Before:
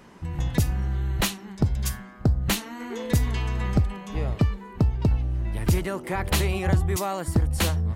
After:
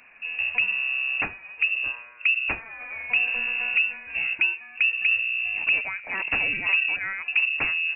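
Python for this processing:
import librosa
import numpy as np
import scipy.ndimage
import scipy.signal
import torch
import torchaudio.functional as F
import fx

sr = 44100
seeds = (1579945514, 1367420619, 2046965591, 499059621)

y = fx.freq_invert(x, sr, carrier_hz=2700)
y = y * librosa.db_to_amplitude(-2.5)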